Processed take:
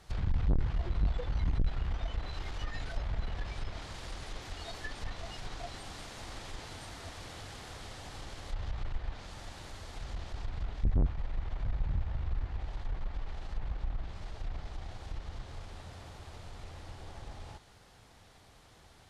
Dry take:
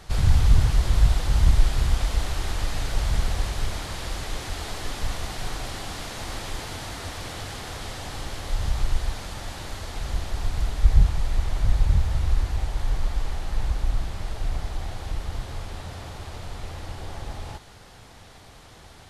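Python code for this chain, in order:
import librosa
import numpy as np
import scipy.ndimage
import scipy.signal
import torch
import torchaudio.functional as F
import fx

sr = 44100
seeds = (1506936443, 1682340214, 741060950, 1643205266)

y = fx.noise_reduce_blind(x, sr, reduce_db=18)
y = fx.tube_stage(y, sr, drive_db=32.0, bias=0.45)
y = fx.env_lowpass_down(y, sr, base_hz=2700.0, full_db=-39.0)
y = y * 10.0 ** (9.0 / 20.0)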